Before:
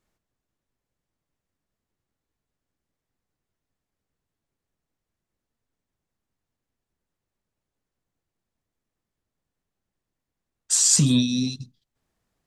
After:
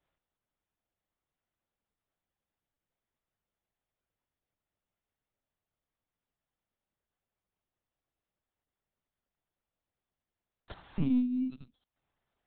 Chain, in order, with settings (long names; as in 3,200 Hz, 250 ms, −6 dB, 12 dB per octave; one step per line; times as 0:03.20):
treble cut that deepens with the level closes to 980 Hz, closed at −21 dBFS
high-pass filter 150 Hz 24 dB per octave
low-shelf EQ 430 Hz −9 dB
in parallel at −8.5 dB: decimation without filtering 17×
on the sum: linear-prediction vocoder at 8 kHz pitch kept
level −2.5 dB